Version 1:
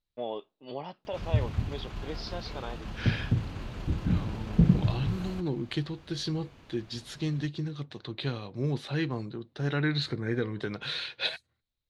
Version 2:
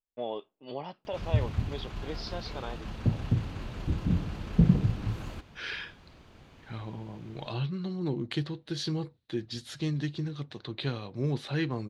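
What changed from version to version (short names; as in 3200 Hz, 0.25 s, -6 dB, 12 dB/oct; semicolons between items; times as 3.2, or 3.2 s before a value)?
second voice: entry +2.60 s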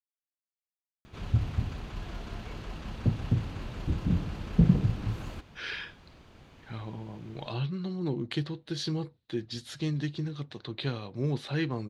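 first voice: muted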